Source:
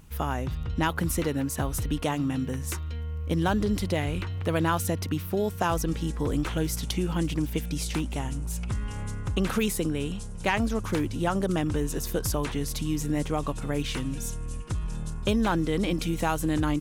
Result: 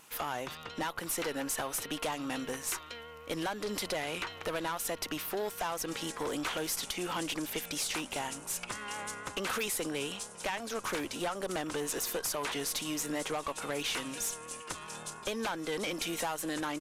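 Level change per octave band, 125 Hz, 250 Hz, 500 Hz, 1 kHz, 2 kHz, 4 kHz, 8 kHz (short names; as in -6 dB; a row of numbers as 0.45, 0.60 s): -20.0, -11.5, -6.0, -5.0, -2.5, 0.0, +0.5 dB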